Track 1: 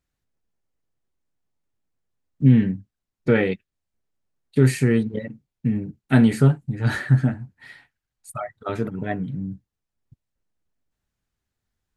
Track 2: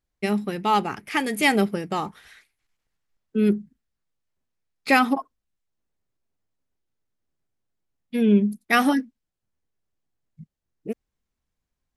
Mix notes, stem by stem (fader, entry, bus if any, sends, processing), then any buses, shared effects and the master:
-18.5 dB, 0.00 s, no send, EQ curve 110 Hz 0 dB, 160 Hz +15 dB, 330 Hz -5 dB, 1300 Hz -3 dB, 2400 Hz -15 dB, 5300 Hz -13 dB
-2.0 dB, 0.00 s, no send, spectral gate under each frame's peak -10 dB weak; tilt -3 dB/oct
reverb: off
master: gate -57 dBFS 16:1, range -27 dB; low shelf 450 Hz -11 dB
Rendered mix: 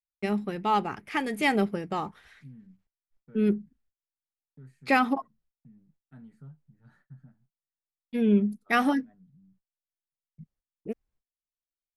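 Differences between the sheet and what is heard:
stem 1 -18.5 dB -> -30.0 dB; stem 2: missing spectral gate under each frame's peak -10 dB weak

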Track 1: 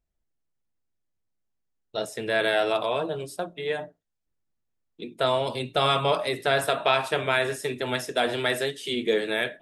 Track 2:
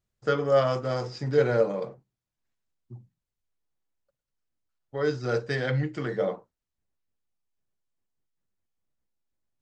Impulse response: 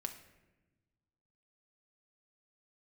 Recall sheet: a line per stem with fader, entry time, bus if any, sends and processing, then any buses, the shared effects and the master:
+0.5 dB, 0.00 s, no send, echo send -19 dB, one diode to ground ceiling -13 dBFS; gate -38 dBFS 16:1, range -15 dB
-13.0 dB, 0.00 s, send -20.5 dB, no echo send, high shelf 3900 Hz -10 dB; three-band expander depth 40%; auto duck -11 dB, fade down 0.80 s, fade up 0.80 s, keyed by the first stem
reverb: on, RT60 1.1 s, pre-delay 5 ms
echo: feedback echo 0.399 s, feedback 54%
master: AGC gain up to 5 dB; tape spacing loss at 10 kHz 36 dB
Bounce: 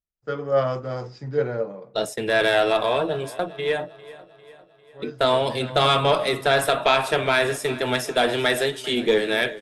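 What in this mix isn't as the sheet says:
stem 2 -13.0 dB -> -5.5 dB; master: missing tape spacing loss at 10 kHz 36 dB

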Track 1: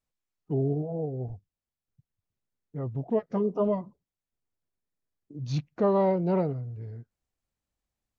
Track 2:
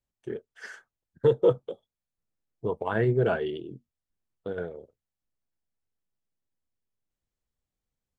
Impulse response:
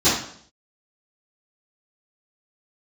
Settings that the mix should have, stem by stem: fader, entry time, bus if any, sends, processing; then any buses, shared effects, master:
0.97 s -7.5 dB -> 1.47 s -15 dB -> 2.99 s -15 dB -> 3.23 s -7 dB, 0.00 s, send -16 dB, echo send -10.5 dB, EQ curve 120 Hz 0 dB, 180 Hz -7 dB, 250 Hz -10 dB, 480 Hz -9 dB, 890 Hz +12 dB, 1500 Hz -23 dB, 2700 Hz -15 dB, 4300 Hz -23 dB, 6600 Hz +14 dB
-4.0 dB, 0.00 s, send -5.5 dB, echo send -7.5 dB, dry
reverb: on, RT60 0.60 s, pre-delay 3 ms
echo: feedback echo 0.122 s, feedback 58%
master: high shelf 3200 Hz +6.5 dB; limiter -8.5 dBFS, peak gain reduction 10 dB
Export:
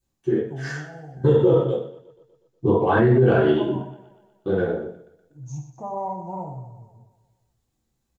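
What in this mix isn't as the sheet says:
stem 1: send -16 dB -> -23.5 dB; master: missing high shelf 3200 Hz +6.5 dB

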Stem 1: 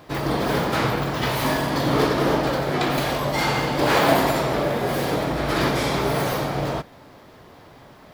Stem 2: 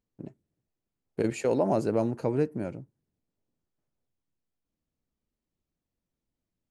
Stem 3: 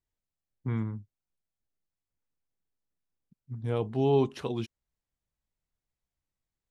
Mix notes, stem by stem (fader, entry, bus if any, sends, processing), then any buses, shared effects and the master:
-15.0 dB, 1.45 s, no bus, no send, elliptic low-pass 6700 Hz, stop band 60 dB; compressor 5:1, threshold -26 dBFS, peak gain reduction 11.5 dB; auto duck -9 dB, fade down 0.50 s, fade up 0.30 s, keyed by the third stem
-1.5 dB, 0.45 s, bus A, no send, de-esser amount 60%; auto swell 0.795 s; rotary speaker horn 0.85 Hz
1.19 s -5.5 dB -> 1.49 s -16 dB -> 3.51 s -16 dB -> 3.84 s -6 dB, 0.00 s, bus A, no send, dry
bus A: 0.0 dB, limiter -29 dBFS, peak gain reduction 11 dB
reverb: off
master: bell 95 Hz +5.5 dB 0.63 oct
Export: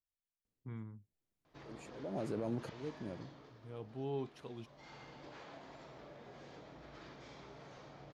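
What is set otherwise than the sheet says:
stem 1 -15.0 dB -> -25.0 dB; stem 3 -5.5 dB -> -15.0 dB; master: missing bell 95 Hz +5.5 dB 0.63 oct

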